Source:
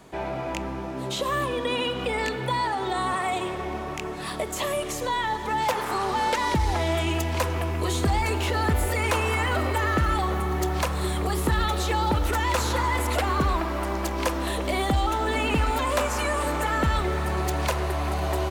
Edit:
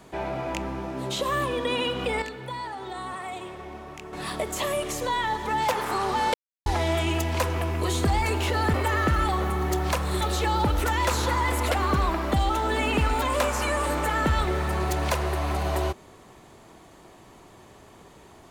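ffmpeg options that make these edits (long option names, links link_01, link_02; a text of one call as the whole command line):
ffmpeg -i in.wav -filter_complex "[0:a]asplit=8[link_01][link_02][link_03][link_04][link_05][link_06][link_07][link_08];[link_01]atrim=end=2.222[link_09];[link_02]atrim=start=2.218:end=4.132,asetpts=PTS-STARTPTS,volume=-8.5dB[link_10];[link_03]atrim=start=4.128:end=6.34,asetpts=PTS-STARTPTS,afade=type=out:start_time=2.208:duration=0.004:curve=hsin[link_11];[link_04]atrim=start=6.34:end=6.66,asetpts=PTS-STARTPTS,volume=0[link_12];[link_05]atrim=start=6.66:end=8.742,asetpts=PTS-STARTPTS,afade=type=in:duration=0.004:curve=hsin[link_13];[link_06]atrim=start=9.638:end=11.112[link_14];[link_07]atrim=start=11.678:end=13.792[link_15];[link_08]atrim=start=14.888[link_16];[link_09][link_10]acrossfade=duration=0.004:curve1=hsin:curve2=hsin[link_17];[link_11][link_12][link_13]concat=n=3:v=0:a=1[link_18];[link_17][link_18]acrossfade=duration=0.004:curve1=hsin:curve2=hsin[link_19];[link_19][link_14]acrossfade=duration=0.004:curve1=hsin:curve2=hsin[link_20];[link_20][link_15]acrossfade=duration=0.004:curve1=hsin:curve2=hsin[link_21];[link_21][link_16]acrossfade=duration=0.004:curve1=hsin:curve2=hsin" out.wav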